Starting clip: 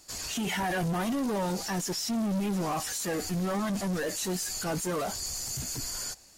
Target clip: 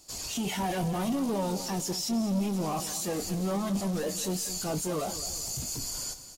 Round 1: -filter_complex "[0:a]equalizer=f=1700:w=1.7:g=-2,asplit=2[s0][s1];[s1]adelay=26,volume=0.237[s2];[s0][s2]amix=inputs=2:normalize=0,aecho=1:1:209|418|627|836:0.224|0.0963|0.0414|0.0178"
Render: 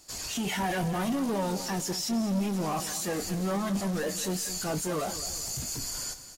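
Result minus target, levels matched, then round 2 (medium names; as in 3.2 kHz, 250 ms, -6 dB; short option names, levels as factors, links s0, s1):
2 kHz band +5.0 dB
-filter_complex "[0:a]equalizer=f=1700:w=1.7:g=-9,asplit=2[s0][s1];[s1]adelay=26,volume=0.237[s2];[s0][s2]amix=inputs=2:normalize=0,aecho=1:1:209|418|627|836:0.224|0.0963|0.0414|0.0178"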